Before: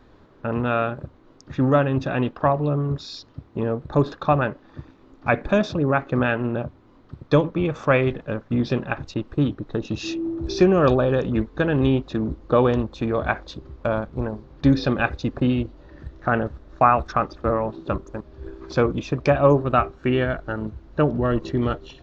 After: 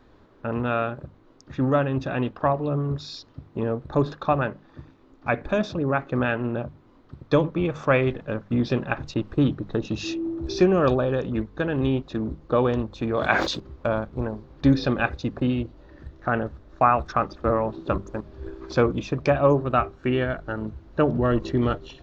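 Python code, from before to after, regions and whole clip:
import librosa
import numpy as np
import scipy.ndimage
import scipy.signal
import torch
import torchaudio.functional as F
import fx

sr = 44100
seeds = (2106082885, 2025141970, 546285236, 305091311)

y = fx.chain(x, sr, fx.highpass(hz=130.0, slope=12),
    fx.high_shelf(hz=2300.0, db=11.0),
    fx.sustainer(db_per_s=53.0), at=(13.17, 13.6))
y = fx.hum_notches(y, sr, base_hz=50, count=4)
y = fx.rider(y, sr, range_db=10, speed_s=2.0)
y = y * librosa.db_to_amplitude(-3.0)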